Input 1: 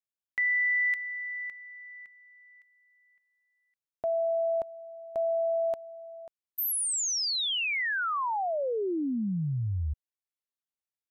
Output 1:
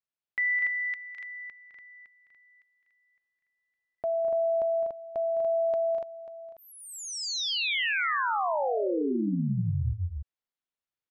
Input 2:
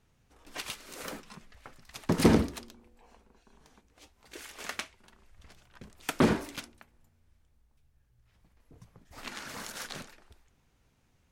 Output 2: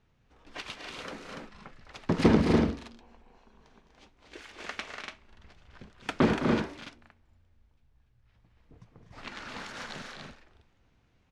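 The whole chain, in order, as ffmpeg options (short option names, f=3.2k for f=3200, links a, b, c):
-filter_complex "[0:a]lowpass=4.2k,asplit=2[a][b];[b]aecho=0:1:209.9|244.9|288.6:0.316|0.447|0.562[c];[a][c]amix=inputs=2:normalize=0"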